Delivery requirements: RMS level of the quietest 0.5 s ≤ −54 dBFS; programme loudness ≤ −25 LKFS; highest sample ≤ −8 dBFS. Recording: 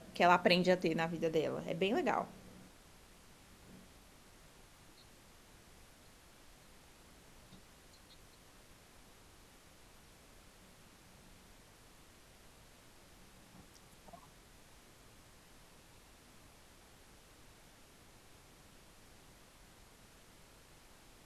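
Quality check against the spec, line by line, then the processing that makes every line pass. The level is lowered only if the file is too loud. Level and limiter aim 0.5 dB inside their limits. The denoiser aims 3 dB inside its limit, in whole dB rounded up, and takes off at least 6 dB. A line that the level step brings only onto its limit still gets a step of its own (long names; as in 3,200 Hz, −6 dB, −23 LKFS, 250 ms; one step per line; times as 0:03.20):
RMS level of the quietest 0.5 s −61 dBFS: in spec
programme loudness −33.0 LKFS: in spec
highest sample −13.0 dBFS: in spec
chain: no processing needed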